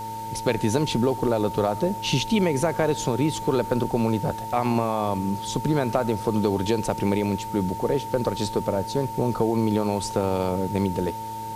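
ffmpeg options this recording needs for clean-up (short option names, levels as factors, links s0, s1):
-af "adeclick=t=4,bandreject=f=109:t=h:w=4,bandreject=f=218:t=h:w=4,bandreject=f=327:t=h:w=4,bandreject=f=436:t=h:w=4,bandreject=f=545:t=h:w=4,bandreject=f=900:w=30,afwtdn=0.0045"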